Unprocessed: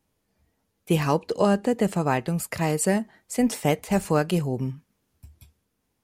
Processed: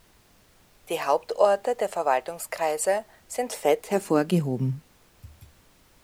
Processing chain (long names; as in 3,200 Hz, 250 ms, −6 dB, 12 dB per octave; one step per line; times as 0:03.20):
high-pass filter sweep 620 Hz → 90 Hz, 0:03.44–0:05.03
background noise pink −56 dBFS
level −2.5 dB